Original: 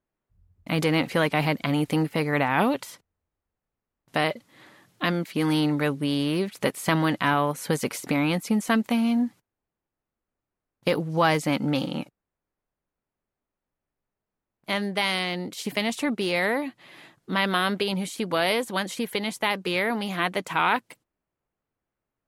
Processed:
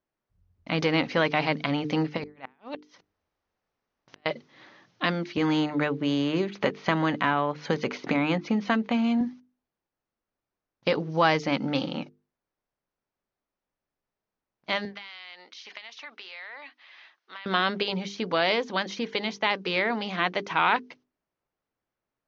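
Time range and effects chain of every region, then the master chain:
0:02.17–0:04.26: low-shelf EQ 200 Hz −6 dB + compressor whose output falls as the input rises −30 dBFS, ratio −0.5 + gate with flip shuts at −21 dBFS, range −31 dB
0:05.37–0:09.21: moving average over 5 samples + bad sample-rate conversion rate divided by 4×, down filtered, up hold + multiband upward and downward compressor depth 70%
0:14.85–0:17.46: high-pass filter 1,200 Hz + downward compressor 8 to 1, threshold −36 dBFS + high-frequency loss of the air 92 metres
whole clip: Butterworth low-pass 6,300 Hz 96 dB per octave; low-shelf EQ 160 Hz −6 dB; mains-hum notches 50/100/150/200/250/300/350/400/450 Hz

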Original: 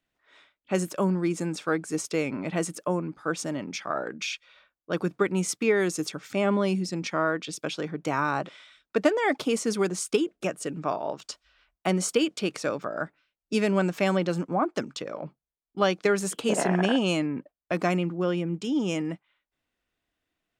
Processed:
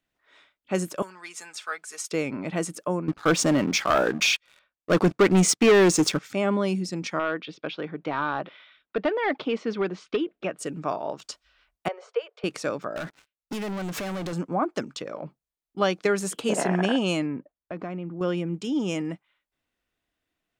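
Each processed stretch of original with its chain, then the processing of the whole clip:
0:01.02–0:02.11: high-pass filter 1,200 Hz + comb filter 4.7 ms, depth 50%
0:03.08–0:06.19: low-pass filter 8,600 Hz + leveller curve on the samples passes 3
0:07.19–0:10.59: low-shelf EQ 120 Hz −9 dB + hard clipping −18.5 dBFS + low-pass filter 3,700 Hz 24 dB per octave
0:11.88–0:12.44: Butterworth high-pass 420 Hz 96 dB per octave + head-to-tape spacing loss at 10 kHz 44 dB
0:12.96–0:14.33: downward compressor 12 to 1, threshold −38 dBFS + leveller curve on the samples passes 5
0:17.36–0:18.21: head-to-tape spacing loss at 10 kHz 31 dB + downward compressor 2.5 to 1, threshold −32 dBFS
whole clip: no processing

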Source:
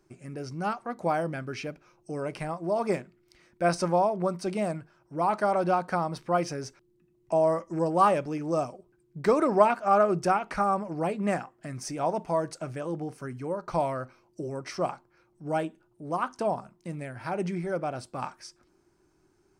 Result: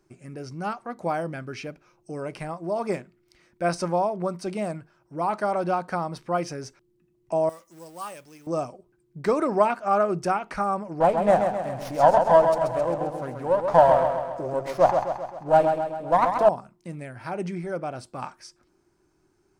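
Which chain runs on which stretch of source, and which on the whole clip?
0:07.49–0:08.47: mu-law and A-law mismatch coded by mu + first-order pre-emphasis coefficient 0.9
0:11.00–0:16.49: flat-topped bell 730 Hz +12 dB 1.2 octaves + repeating echo 132 ms, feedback 55%, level −6 dB + windowed peak hold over 5 samples
whole clip: no processing

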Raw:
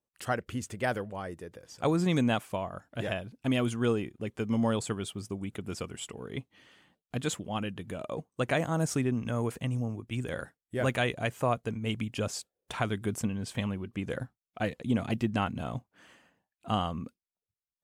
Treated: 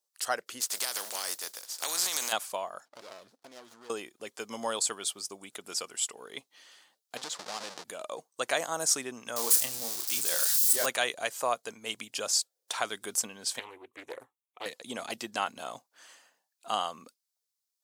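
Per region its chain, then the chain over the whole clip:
0:00.60–0:02.31: compressing power law on the bin magnitudes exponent 0.43 + high-pass filter 140 Hz 24 dB per octave + downward compressor 12 to 1, threshold −32 dBFS
0:02.85–0:03.90: parametric band 13,000 Hz −8.5 dB 0.7 octaves + downward compressor 8 to 1, threshold −40 dBFS + windowed peak hold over 17 samples
0:07.17–0:07.84: each half-wave held at its own peak + downward compressor 10 to 1, threshold −33 dBFS + high-frequency loss of the air 77 metres
0:09.36–0:10.86: spike at every zero crossing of −26.5 dBFS + double-tracking delay 30 ms −7.5 dB
0:13.59–0:14.66: high-shelf EQ 3,200 Hz −9 dB + phaser with its sweep stopped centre 990 Hz, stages 8 + highs frequency-modulated by the lows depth 0.42 ms
whole clip: high-pass filter 650 Hz 12 dB per octave; high shelf with overshoot 3,500 Hz +8 dB, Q 1.5; level +2.5 dB

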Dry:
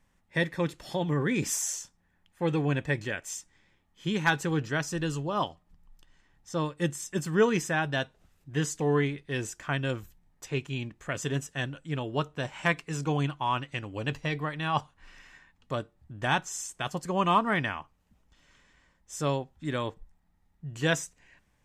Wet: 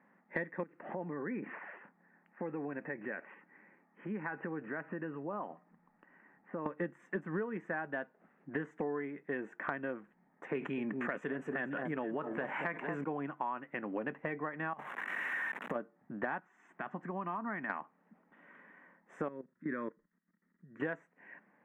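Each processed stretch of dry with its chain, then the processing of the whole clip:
0:00.63–0:06.66: Butterworth low-pass 2,900 Hz 72 dB per octave + downward compressor 4 to 1, threshold −43 dBFS
0:10.55–0:13.04: high-shelf EQ 3,100 Hz +8.5 dB + delay that swaps between a low-pass and a high-pass 229 ms, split 1,200 Hz, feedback 51%, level −13 dB + envelope flattener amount 70%
0:14.73–0:15.76: spike at every zero crossing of −22.5 dBFS + low-shelf EQ 400 Hz +4 dB + compressor whose output falls as the input rises −31 dBFS, ratio −0.5
0:16.39–0:17.70: low-pass filter 6,300 Hz + parametric band 490 Hz −10.5 dB 0.41 octaves + downward compressor 3 to 1, threshold −44 dBFS
0:19.28–0:20.80: output level in coarse steps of 17 dB + phaser with its sweep stopped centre 2,900 Hz, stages 6
whole clip: elliptic band-pass filter 200–1,900 Hz, stop band 40 dB; downward compressor 16 to 1, threshold −41 dBFS; level +7.5 dB

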